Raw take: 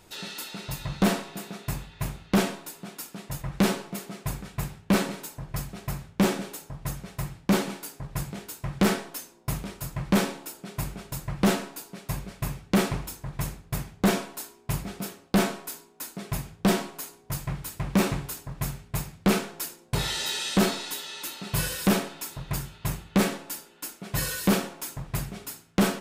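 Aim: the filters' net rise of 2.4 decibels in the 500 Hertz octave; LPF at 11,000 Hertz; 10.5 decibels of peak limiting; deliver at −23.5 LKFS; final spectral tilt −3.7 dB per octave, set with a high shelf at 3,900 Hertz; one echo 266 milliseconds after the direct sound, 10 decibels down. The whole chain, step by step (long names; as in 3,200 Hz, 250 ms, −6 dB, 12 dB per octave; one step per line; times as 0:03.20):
low-pass filter 11,000 Hz
parametric band 500 Hz +3 dB
high-shelf EQ 3,900 Hz +8.5 dB
brickwall limiter −20.5 dBFS
single-tap delay 266 ms −10 dB
level +8.5 dB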